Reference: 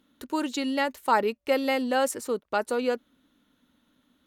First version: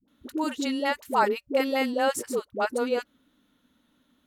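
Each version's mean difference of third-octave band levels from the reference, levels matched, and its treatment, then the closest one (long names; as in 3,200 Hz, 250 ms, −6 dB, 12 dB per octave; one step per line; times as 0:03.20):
9.5 dB: all-pass dispersion highs, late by 81 ms, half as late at 470 Hz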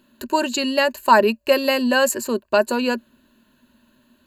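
3.0 dB: EQ curve with evenly spaced ripples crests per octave 1.4, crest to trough 13 dB
level +7 dB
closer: second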